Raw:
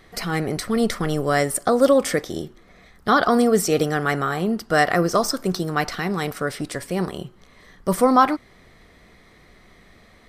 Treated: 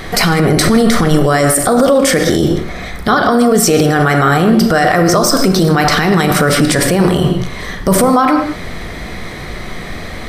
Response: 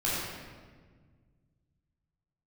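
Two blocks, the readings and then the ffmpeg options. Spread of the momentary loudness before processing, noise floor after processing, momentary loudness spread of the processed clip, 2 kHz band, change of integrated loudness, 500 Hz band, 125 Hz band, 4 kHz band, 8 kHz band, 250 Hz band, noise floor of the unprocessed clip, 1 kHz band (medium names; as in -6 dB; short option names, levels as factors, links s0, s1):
13 LU, -26 dBFS, 16 LU, +10.0 dB, +9.5 dB, +8.5 dB, +14.5 dB, +13.0 dB, +13.5 dB, +11.5 dB, -52 dBFS, +8.0 dB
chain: -filter_complex "[0:a]acompressor=threshold=0.0708:ratio=12,asplit=2[s0][s1];[1:a]atrim=start_sample=2205,afade=t=out:st=0.26:d=0.01,atrim=end_sample=11907[s2];[s1][s2]afir=irnorm=-1:irlink=0,volume=0.2[s3];[s0][s3]amix=inputs=2:normalize=0,alimiter=level_in=15.8:limit=0.891:release=50:level=0:latency=1,volume=0.891"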